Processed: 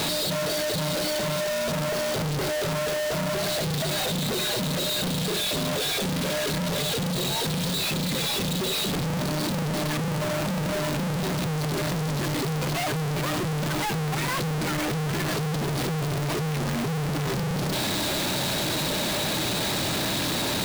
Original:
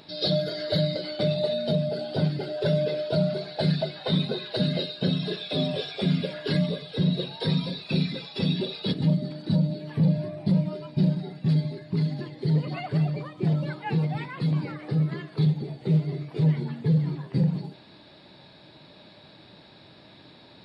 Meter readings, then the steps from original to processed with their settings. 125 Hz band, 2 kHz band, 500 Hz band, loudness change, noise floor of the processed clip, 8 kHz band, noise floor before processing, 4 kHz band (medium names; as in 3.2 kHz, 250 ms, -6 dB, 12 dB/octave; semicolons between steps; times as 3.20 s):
-3.0 dB, +10.5 dB, +1.5 dB, +0.5 dB, -27 dBFS, no reading, -52 dBFS, +6.5 dB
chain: one-bit comparator